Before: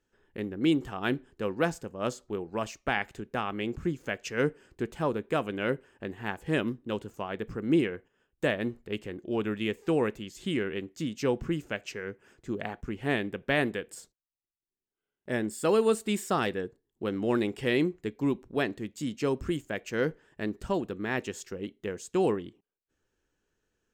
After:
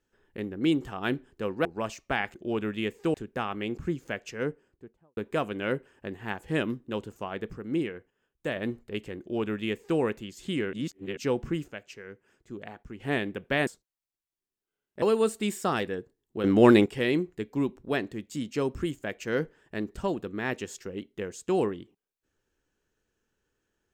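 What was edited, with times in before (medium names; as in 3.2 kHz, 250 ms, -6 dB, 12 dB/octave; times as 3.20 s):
1.65–2.42 s: delete
3.96–5.15 s: studio fade out
7.51–8.54 s: gain -4.5 dB
9.18–9.97 s: copy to 3.12 s
10.71–11.15 s: reverse
11.66–12.98 s: gain -7 dB
13.65–13.97 s: delete
15.32–15.68 s: delete
17.10–17.52 s: gain +10 dB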